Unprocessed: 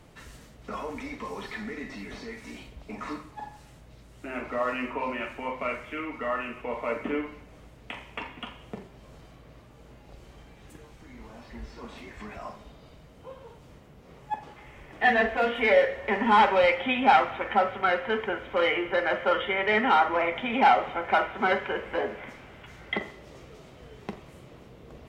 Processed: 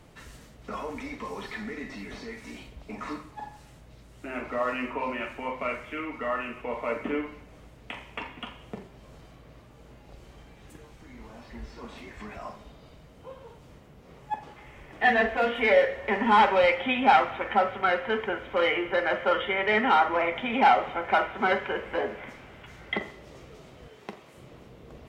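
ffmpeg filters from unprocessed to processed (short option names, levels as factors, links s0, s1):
-filter_complex "[0:a]asettb=1/sr,asplit=3[s0][s1][s2];[s0]atrim=end=23.884[s3];[s1]atrim=start=23.88:end=24.38,asetpts=PTS-STARTPTS,afade=t=in:d=0.004:c=qsin,afade=t=out:st=0.496:d=0.004:c=qsin,highpass=f=370:p=1[s4];[s2]atrim=start=24.376[s5];[s3][s4]acrossfade=d=0.004:c1=hsin:c2=qsin[s6];[s6][s5]acrossfade=d=0.004:c1=qsin:c2=hsin"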